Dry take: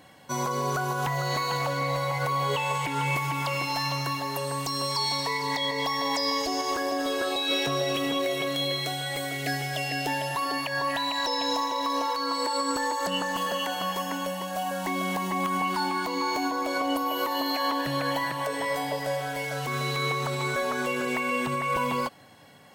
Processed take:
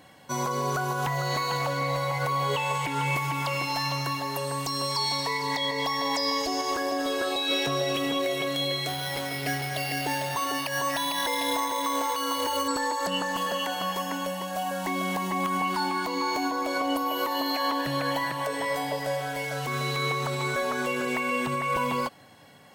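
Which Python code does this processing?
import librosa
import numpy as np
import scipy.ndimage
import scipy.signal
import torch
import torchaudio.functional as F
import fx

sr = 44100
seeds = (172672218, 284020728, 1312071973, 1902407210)

y = fx.resample_bad(x, sr, factor=6, down='none', up='hold', at=(8.88, 12.68))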